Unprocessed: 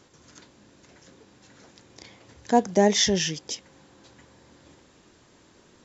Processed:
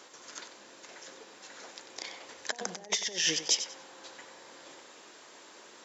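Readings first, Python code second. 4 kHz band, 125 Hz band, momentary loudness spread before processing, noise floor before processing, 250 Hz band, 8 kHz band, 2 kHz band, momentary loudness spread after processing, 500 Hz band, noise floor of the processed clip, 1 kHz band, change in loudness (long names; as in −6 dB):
−2.5 dB, −19.5 dB, 16 LU, −58 dBFS, −20.0 dB, can't be measured, −2.5 dB, 23 LU, −17.5 dB, −54 dBFS, −16.0 dB, −8.5 dB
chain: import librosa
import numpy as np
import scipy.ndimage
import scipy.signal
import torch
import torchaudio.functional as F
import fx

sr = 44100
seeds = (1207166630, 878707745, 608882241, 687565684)

y = fx.over_compress(x, sr, threshold_db=-29.0, ratio=-0.5)
y = scipy.signal.sosfilt(scipy.signal.butter(2, 520.0, 'highpass', fs=sr, output='sos'), y)
y = fx.echo_feedback(y, sr, ms=94, feedback_pct=24, wet_db=-10.5)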